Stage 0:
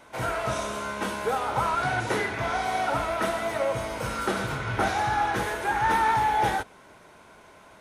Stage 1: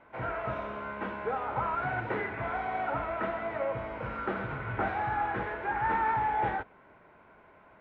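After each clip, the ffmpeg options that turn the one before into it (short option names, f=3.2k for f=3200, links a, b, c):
-af "lowpass=f=2.4k:w=0.5412,lowpass=f=2.4k:w=1.3066,volume=-5.5dB"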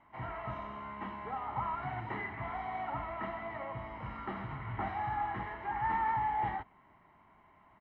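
-af "aecho=1:1:1:0.71,volume=-7dB"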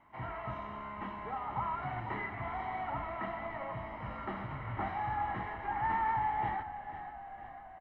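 -filter_complex "[0:a]asplit=8[a][b][c][d][e][f][g][h];[b]adelay=494,afreqshift=-33,volume=-11.5dB[i];[c]adelay=988,afreqshift=-66,volume=-15.8dB[j];[d]adelay=1482,afreqshift=-99,volume=-20.1dB[k];[e]adelay=1976,afreqshift=-132,volume=-24.4dB[l];[f]adelay=2470,afreqshift=-165,volume=-28.7dB[m];[g]adelay=2964,afreqshift=-198,volume=-33dB[n];[h]adelay=3458,afreqshift=-231,volume=-37.3dB[o];[a][i][j][k][l][m][n][o]amix=inputs=8:normalize=0"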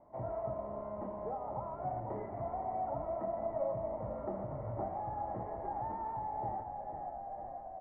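-af "acompressor=threshold=-41dB:ratio=2,flanger=delay=5.4:depth=4:regen=85:speed=1.6:shape=sinusoidal,lowpass=f=590:t=q:w=4.7,volume=5.5dB"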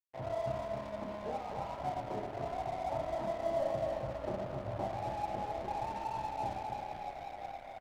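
-filter_complex "[0:a]asplit=2[a][b];[b]aecho=0:1:30|69|119.7|185.6|271.3:0.631|0.398|0.251|0.158|0.1[c];[a][c]amix=inputs=2:normalize=0,aeval=exprs='sgn(val(0))*max(abs(val(0))-0.00422,0)':c=same,asplit=2[d][e];[e]aecho=0:1:264:0.501[f];[d][f]amix=inputs=2:normalize=0"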